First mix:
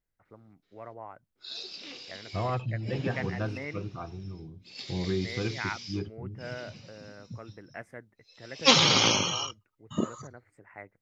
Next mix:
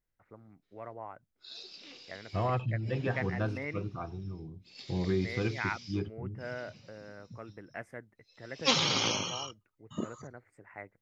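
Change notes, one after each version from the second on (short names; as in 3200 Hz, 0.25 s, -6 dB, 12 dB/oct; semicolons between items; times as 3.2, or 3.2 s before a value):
background -7.0 dB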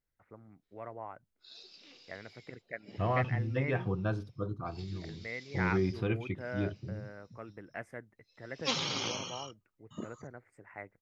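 second voice: entry +0.65 s; background -6.0 dB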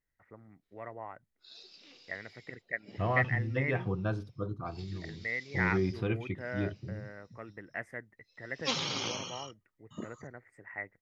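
first voice: add bell 1900 Hz +12 dB 0.22 oct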